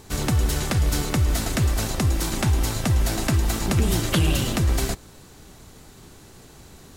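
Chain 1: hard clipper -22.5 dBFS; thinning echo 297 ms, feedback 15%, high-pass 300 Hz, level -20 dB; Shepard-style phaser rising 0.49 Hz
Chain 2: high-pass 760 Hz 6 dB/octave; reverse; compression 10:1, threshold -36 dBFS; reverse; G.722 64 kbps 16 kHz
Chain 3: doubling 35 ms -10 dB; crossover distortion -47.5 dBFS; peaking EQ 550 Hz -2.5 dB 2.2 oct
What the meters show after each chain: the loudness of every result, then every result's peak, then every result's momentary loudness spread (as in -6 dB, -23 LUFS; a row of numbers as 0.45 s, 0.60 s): -27.0 LUFS, -40.0 LUFS, -23.0 LUFS; -18.5 dBFS, -24.0 dBFS, -9.5 dBFS; 2 LU, 12 LU, 2 LU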